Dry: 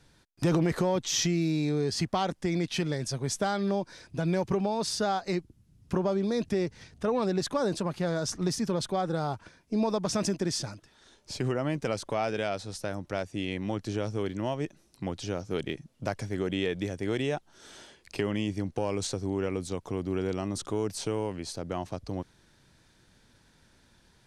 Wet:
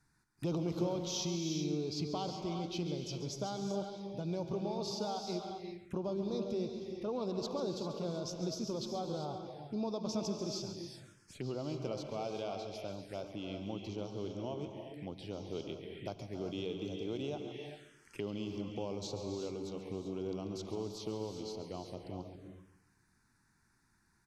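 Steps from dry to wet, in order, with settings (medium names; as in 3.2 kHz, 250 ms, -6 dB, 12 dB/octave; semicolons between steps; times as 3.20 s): bass shelf 100 Hz -7 dB; on a send: feedback delay 138 ms, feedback 40%, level -11.5 dB; on the sum: gated-style reverb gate 420 ms rising, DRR 4 dB; touch-sensitive phaser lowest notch 530 Hz, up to 1.8 kHz, full sweep at -29 dBFS; trim -8.5 dB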